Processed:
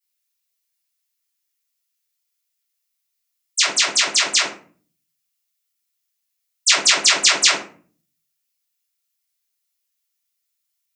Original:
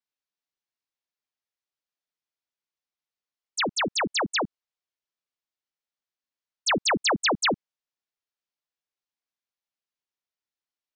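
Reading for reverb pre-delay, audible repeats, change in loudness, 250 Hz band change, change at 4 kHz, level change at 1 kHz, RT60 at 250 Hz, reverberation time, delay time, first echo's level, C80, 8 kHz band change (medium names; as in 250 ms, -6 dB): 3 ms, no echo, +9.5 dB, -7.5 dB, +11.5 dB, +1.0 dB, 0.70 s, 0.45 s, no echo, no echo, 11.0 dB, +16.0 dB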